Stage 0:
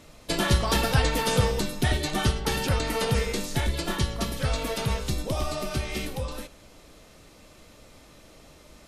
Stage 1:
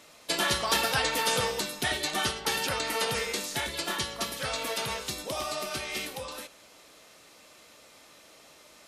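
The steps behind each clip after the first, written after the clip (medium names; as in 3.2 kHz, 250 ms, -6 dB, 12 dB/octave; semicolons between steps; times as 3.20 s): high-pass 800 Hz 6 dB/octave; trim +1.5 dB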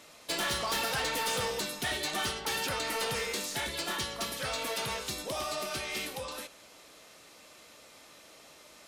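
saturation -27.5 dBFS, distortion -10 dB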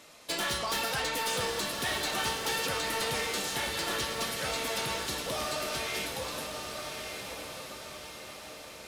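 echo that smears into a reverb 1193 ms, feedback 53%, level -5 dB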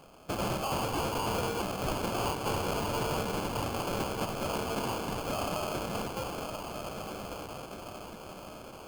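sample-rate reducer 1.9 kHz, jitter 0%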